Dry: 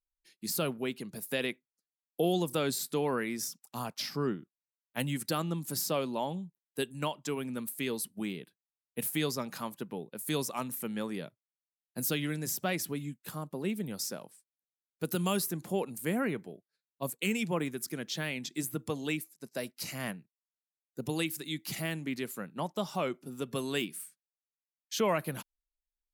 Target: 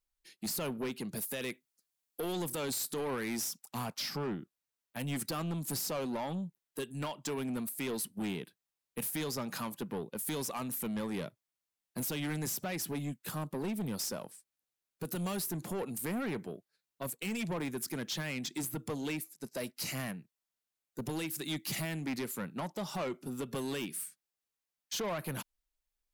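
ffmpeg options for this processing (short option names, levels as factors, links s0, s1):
-filter_complex "[0:a]asettb=1/sr,asplit=3[s0][s1][s2];[s0]atrim=end=1.174[s3];[s1]atrim=start=1.17:end=3.62,asetpts=PTS-STARTPTS,afade=t=in:d=0.004:c=qsin,afade=t=out:st=2.446:d=0.004:c=qsin,highshelf=f=4300:g=6.5[s4];[s2]atrim=start=3.616[s5];[s3][s4]acrossfade=d=0.004:c1=hsin:c2=qsin[s6];[s6][s5]acrossfade=d=0.004:c1=qsin:c2=hsin,alimiter=level_in=1.26:limit=0.0631:level=0:latency=1:release=197,volume=0.794,asoftclip=type=tanh:threshold=0.015,volume=1.78"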